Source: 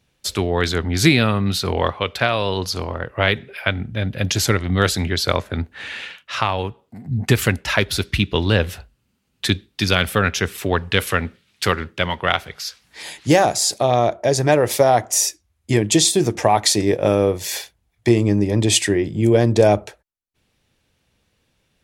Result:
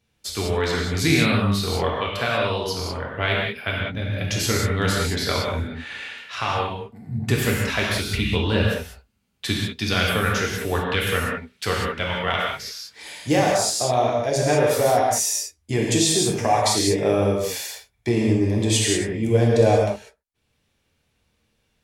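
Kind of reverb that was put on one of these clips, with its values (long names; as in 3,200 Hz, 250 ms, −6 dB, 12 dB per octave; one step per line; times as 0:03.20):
reverb whose tail is shaped and stops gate 220 ms flat, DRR −3.5 dB
level −7.5 dB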